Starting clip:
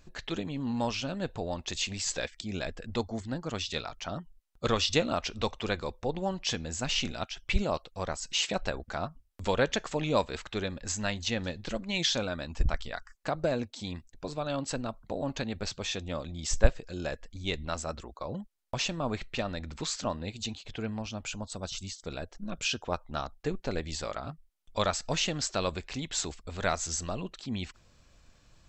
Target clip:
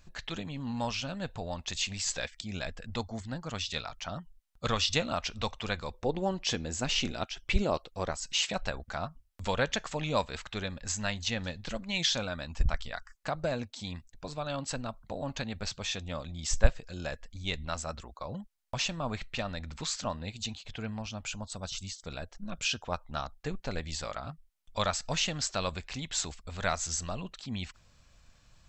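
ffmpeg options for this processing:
ffmpeg -i in.wav -af "asetnsamples=nb_out_samples=441:pad=0,asendcmd='5.94 equalizer g 2.5;8.11 equalizer g -7.5',equalizer=frequency=360:width_type=o:width=1.1:gain=-8.5" out.wav

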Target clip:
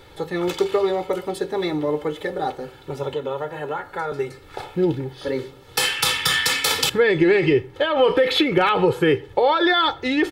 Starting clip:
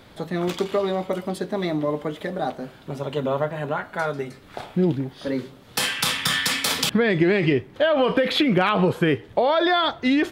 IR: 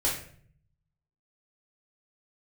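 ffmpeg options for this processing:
-filter_complex "[0:a]aecho=1:1:2.3:0.74,asplit=2[link_01][link_02];[1:a]atrim=start_sample=2205,atrim=end_sample=6174[link_03];[link_02][link_03]afir=irnorm=-1:irlink=0,volume=-26.5dB[link_04];[link_01][link_04]amix=inputs=2:normalize=0,asettb=1/sr,asplit=3[link_05][link_06][link_07];[link_05]atrim=end=3.134[link_08];[link_06]atrim=start=3.13:end=4.12,asetpts=PTS-STARTPTS,afade=type=in:duration=0.004:curve=qsin,afade=type=out:start_time=0.986:duration=0.004:curve=qsin,acrossover=split=230|1700|4200[link_09][link_10][link_11][link_12];[link_09]acompressor=threshold=-43dB:ratio=4[link_13];[link_10]acompressor=threshold=-24dB:ratio=4[link_14];[link_11]acompressor=threshold=-43dB:ratio=4[link_15];[link_12]acompressor=threshold=-56dB:ratio=4[link_16];[link_13][link_14][link_15][link_16]amix=inputs=4:normalize=0[link_17];[link_07]atrim=start=4.116[link_18];[link_08][link_17]acrossfade=duration=0.004:curve1=hsin:curve2=qsin[link_19];[link_19][link_18]acrossfade=duration=0.004:curve1=qsin:curve2=hsin"

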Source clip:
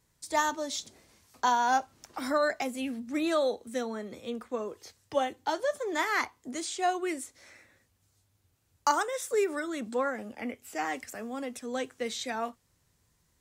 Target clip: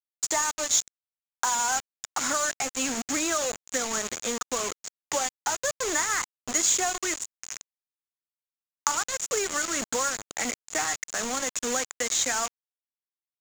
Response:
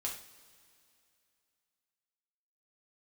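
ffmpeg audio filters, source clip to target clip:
-af "equalizer=frequency=1400:width=0.62:gain=14,acompressor=threshold=-32dB:ratio=5,acrusher=bits=5:mix=0:aa=0.000001,lowpass=frequency=6900:width_type=q:width=9.5,acrusher=bits=4:mode=log:mix=0:aa=0.000001,volume=3dB"

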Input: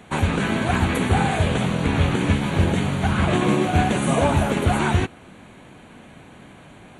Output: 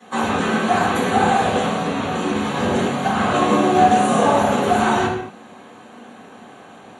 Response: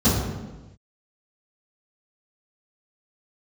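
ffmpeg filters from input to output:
-filter_complex "[0:a]asettb=1/sr,asplit=3[link_01][link_02][link_03];[link_01]atrim=end=1.764[link_04];[link_02]atrim=start=1.76:end=2.35,asetpts=PTS-STARTPTS,afade=type=in:duration=0.004:curve=qsin,afade=type=out:start_time=0.586:duration=0.004:curve=qsin,acompressor=threshold=-19dB:ratio=3[link_05];[link_03]atrim=start=2.346[link_06];[link_04][link_05]acrossfade=duration=0.004:curve1=hsin:curve2=qsin[link_07];[link_07][link_06]acrossfade=duration=0.004:curve1=qsin:curve2=hsin,highpass=670[link_08];[1:a]atrim=start_sample=2205,afade=type=out:start_time=0.3:duration=0.01,atrim=end_sample=13671[link_09];[link_08][link_09]afir=irnorm=-1:irlink=0,volume=-11dB"

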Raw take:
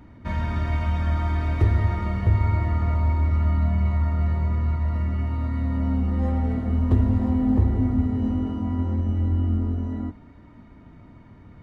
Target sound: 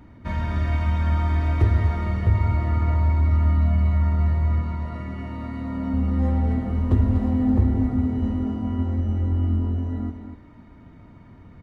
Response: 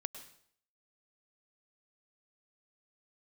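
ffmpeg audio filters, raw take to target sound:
-filter_complex "[0:a]asettb=1/sr,asplit=3[link_01][link_02][link_03];[link_01]atrim=end=4.614[link_04];[link_02]atrim=start=4.61:end=5.94,asetpts=PTS-STARTPTS,afade=type=in:duration=0.004:curve=qsin,afade=type=out:start_time=1.326:duration=0.004:curve=qsin,equalizer=frequency=76:width_type=o:width=0.77:gain=-12.5[link_05];[link_03]atrim=start=5.936[link_06];[link_04][link_05]acrossfade=duration=0.004:curve1=hsin:curve2=qsin[link_07];[link_07][link_06]acrossfade=duration=0.004:curve1=qsin:curve2=hsin,aecho=1:1:244:0.376"

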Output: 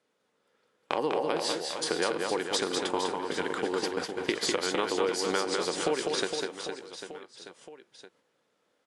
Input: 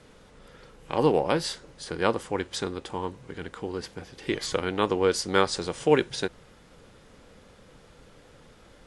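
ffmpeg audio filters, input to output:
ffmpeg -i in.wav -af "agate=range=-29dB:threshold=-41dB:ratio=16:detection=peak,highpass=290,acompressor=threshold=-35dB:ratio=10,aecho=1:1:200|460|798|1237|1809:0.631|0.398|0.251|0.158|0.1,volume=9dB" out.wav

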